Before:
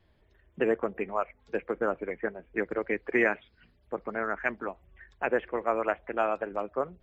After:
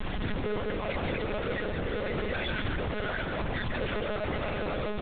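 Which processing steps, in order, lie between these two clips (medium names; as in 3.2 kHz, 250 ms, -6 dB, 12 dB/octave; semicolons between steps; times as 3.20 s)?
one-bit comparator; peaking EQ 140 Hz +6.5 dB 2.1 oct; comb 2 ms, depth 86%; peak limiter -27.5 dBFS, peak gain reduction 7 dB; tempo 1.4×; delay 149 ms -5.5 dB; on a send at -13 dB: reverberation RT60 2.3 s, pre-delay 146 ms; on the sum: monotone LPC vocoder at 8 kHz 210 Hz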